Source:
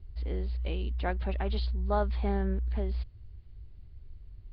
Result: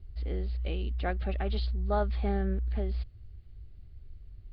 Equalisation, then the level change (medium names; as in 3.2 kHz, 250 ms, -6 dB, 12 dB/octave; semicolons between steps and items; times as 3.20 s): Butterworth band-stop 960 Hz, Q 5.2; 0.0 dB